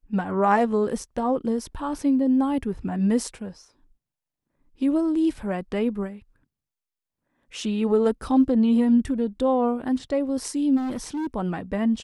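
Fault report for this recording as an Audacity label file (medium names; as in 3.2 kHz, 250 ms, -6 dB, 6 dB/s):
10.760000	11.270000	clipped -25.5 dBFS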